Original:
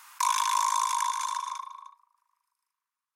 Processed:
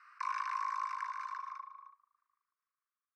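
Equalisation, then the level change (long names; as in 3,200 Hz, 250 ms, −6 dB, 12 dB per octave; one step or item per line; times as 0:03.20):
moving average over 13 samples
Butterworth high-pass 1,100 Hz 96 dB per octave
high-frequency loss of the air 120 metres
0.0 dB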